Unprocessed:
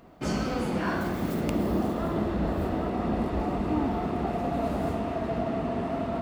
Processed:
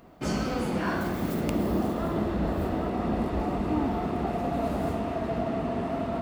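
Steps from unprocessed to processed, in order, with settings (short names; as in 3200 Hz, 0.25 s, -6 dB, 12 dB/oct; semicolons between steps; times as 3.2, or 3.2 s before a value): high shelf 9500 Hz +3.5 dB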